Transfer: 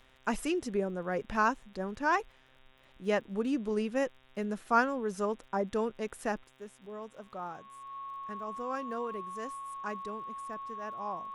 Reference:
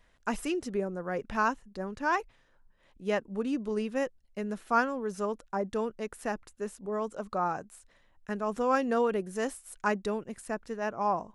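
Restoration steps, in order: de-click; de-hum 131 Hz, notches 29; notch 1100 Hz, Q 30; gain correction +10.5 dB, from 6.44

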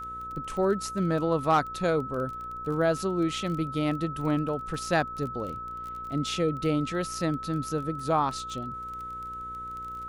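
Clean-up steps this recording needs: clip repair -14 dBFS; de-click; de-hum 60.1 Hz, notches 9; notch 1300 Hz, Q 30

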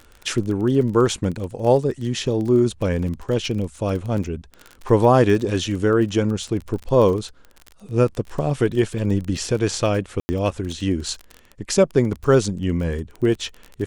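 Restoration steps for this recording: de-click; room tone fill 10.2–10.29

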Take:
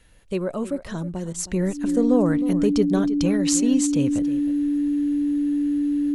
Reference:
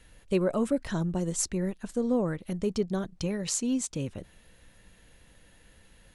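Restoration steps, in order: notch 290 Hz, Q 30; interpolate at 1.33, 11 ms; inverse comb 0.316 s -14.5 dB; gain correction -7 dB, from 1.48

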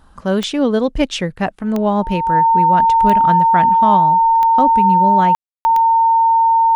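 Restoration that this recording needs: de-click; notch 910 Hz, Q 30; room tone fill 5.35–5.65

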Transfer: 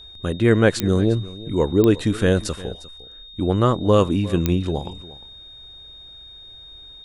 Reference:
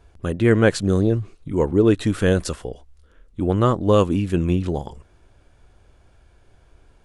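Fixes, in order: de-click; notch 3700 Hz, Q 30; inverse comb 0.353 s -18.5 dB

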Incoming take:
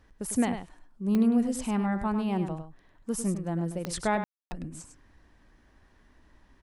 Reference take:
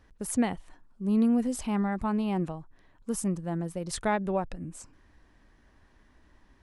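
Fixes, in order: de-click; room tone fill 4.24–4.51; inverse comb 0.101 s -8.5 dB

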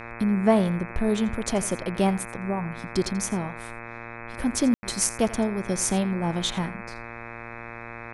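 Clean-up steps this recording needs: de-hum 116.7 Hz, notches 22; room tone fill 4.74–4.83; inverse comb 85 ms -18 dB

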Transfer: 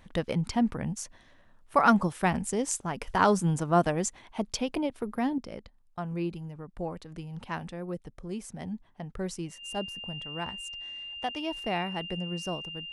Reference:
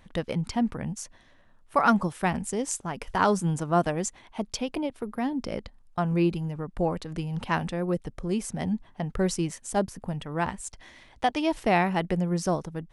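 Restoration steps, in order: notch 2800 Hz, Q 30; gain correction +8.5 dB, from 5.38

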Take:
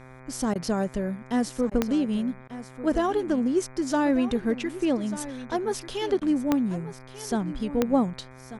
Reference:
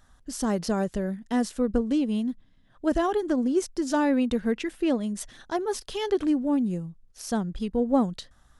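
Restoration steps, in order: de-click; de-hum 129.4 Hz, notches 19; interpolate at 0.54/1.7/2.48/6.2, 13 ms; inverse comb 1.191 s -14 dB

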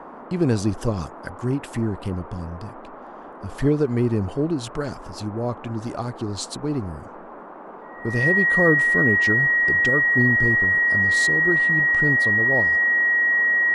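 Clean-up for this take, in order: notch 1900 Hz, Q 30; noise print and reduce 27 dB

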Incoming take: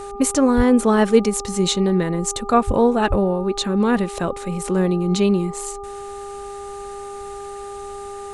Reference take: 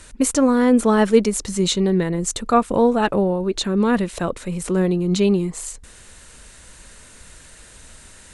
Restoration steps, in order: de-hum 401.9 Hz, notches 3; de-plosive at 0.56/2.66/3.09

